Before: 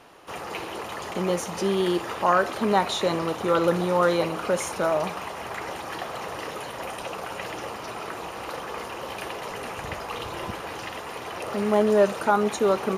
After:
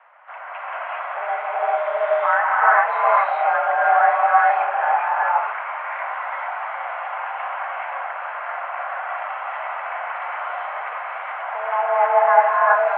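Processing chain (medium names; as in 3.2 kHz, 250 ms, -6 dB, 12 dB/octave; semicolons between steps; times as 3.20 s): gated-style reverb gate 450 ms rising, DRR -6 dB; mistuned SSB +240 Hz 370–2100 Hz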